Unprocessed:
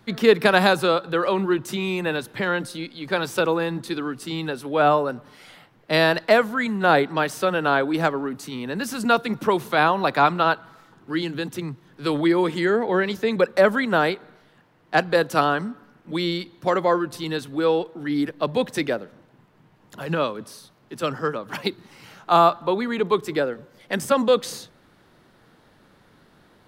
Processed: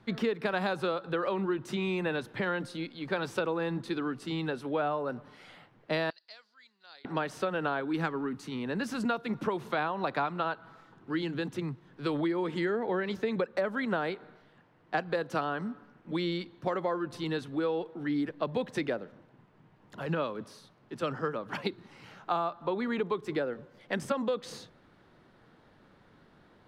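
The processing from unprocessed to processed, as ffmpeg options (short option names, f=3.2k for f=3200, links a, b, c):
-filter_complex "[0:a]asettb=1/sr,asplit=3[a][b][c];[a]atrim=end=6.104[d];[b]atrim=start=6.1:end=7.05,asetpts=PTS-STARTPTS,afade=t=in:d=0.004:c=qsin,afade=t=out:st=0.946:d=0.004:c=qsin,bandpass=f=4.7k:t=q:w=11[e];[c]atrim=start=7.046[f];[d][e]acrossfade=d=0.004:c1=hsin:c2=qsin[g];[g][f]acrossfade=d=0.004:c1=qsin:c2=hsin,asettb=1/sr,asplit=3[h][i][j];[h]atrim=end=7.804[k];[i]atrim=start=7.8:end=8.45,asetpts=PTS-STARTPTS,afade=t=in:d=0.004:c=qsin,afade=t=out:st=0.646:d=0.004:c=qsin,equalizer=f=620:t=o:w=0.52:g=-11.5[l];[j]atrim=start=8.446[m];[k][l]acrossfade=d=0.004:c1=hsin:c2=qsin[n];[n][m]acrossfade=d=0.004:c1=qsin:c2=hsin,aemphasis=mode=reproduction:type=50fm,acompressor=threshold=-22dB:ratio=10,volume=-4.5dB"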